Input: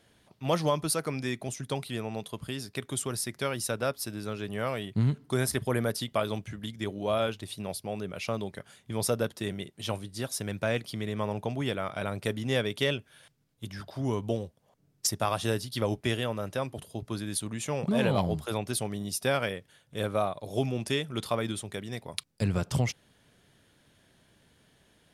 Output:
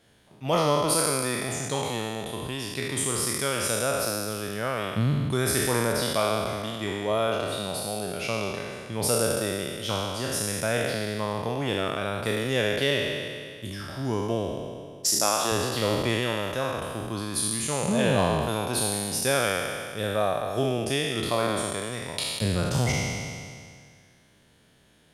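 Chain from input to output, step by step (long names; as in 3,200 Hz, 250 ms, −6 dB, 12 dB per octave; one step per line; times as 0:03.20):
peak hold with a decay on every bin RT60 2.09 s
0:15.11–0:15.52: high-pass filter 240 Hz 12 dB per octave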